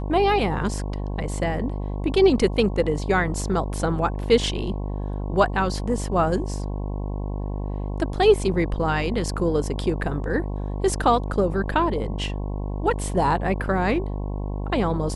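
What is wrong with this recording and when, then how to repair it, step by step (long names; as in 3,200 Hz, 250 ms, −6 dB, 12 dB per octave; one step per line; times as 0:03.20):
mains buzz 50 Hz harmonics 22 −28 dBFS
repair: hum removal 50 Hz, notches 22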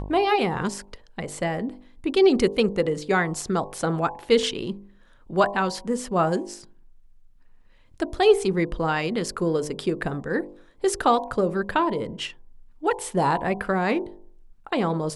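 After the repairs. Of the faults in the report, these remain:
none of them is left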